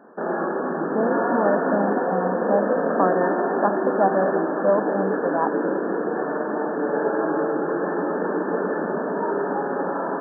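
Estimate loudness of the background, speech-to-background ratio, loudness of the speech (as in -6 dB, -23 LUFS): -24.0 LUFS, -1.5 dB, -25.5 LUFS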